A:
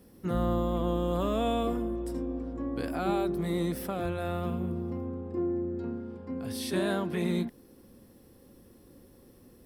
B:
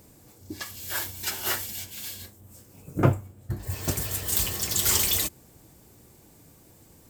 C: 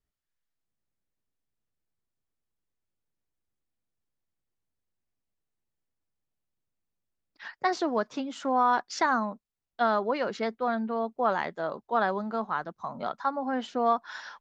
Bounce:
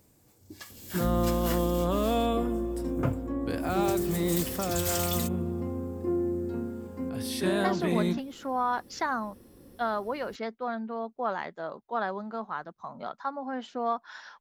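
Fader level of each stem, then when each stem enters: +2.0, -9.0, -4.5 dB; 0.70, 0.00, 0.00 s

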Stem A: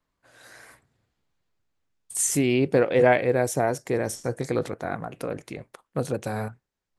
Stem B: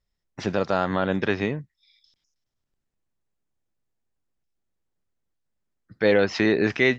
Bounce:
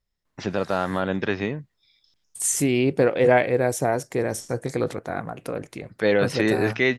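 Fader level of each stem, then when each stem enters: +1.0, -1.0 dB; 0.25, 0.00 s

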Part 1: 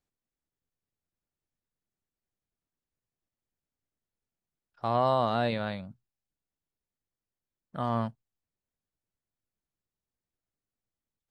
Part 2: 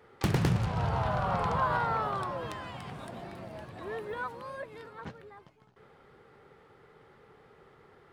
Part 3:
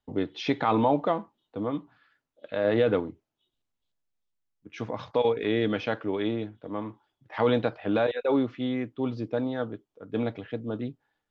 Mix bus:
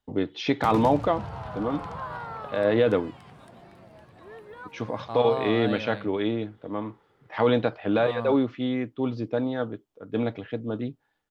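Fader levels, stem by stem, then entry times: -5.0, -7.0, +2.0 dB; 0.25, 0.40, 0.00 s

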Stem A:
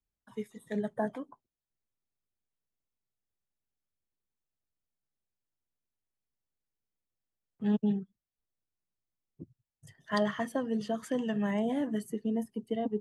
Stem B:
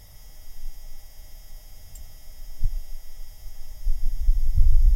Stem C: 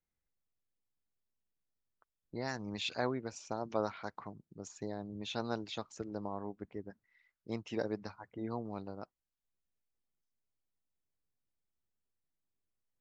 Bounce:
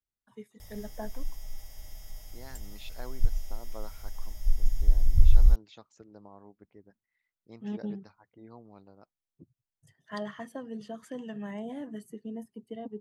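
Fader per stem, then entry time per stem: -7.5, -1.0, -10.5 dB; 0.00, 0.60, 0.00 s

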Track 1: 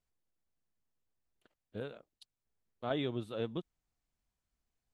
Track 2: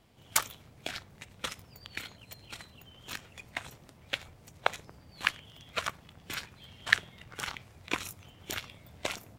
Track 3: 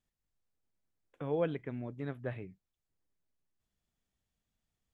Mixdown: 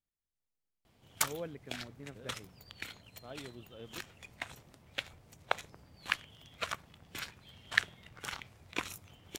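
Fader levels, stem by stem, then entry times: -13.0, -4.0, -9.5 dB; 0.40, 0.85, 0.00 s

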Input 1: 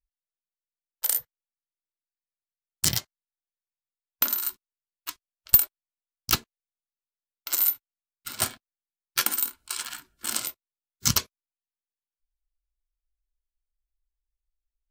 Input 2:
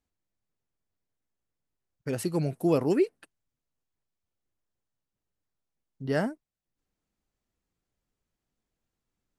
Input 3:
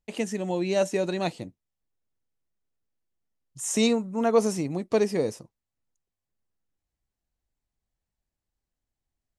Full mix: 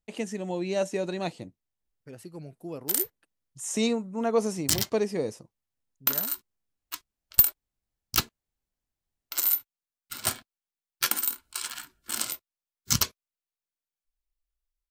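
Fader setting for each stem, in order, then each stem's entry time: -1.5, -14.0, -3.5 dB; 1.85, 0.00, 0.00 s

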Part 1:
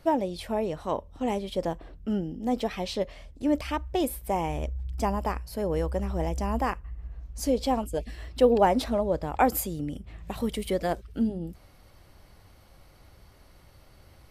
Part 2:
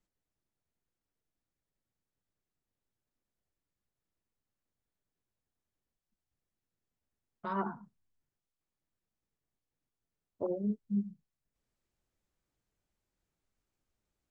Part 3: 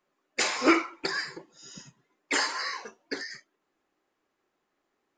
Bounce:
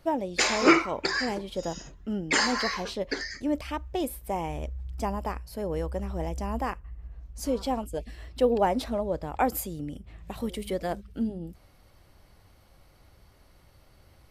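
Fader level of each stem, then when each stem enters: -3.0, -15.0, +2.5 dB; 0.00, 0.00, 0.00 s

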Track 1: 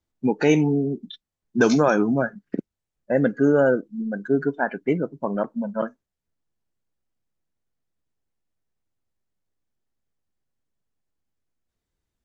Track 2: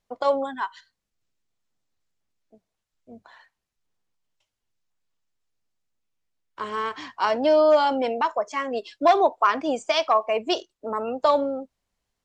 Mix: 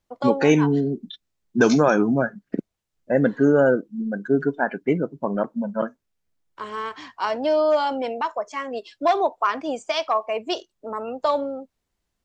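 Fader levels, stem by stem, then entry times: +1.0, -2.0 dB; 0.00, 0.00 s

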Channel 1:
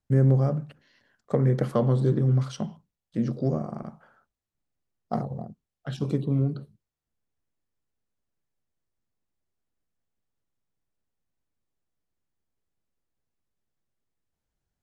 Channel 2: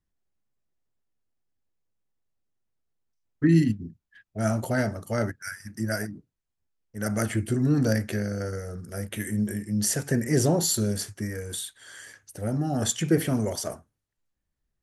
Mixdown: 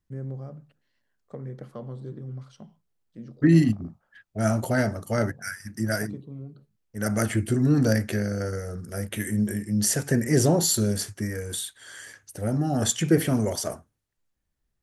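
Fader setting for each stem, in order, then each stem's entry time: -15.0, +2.0 dB; 0.00, 0.00 s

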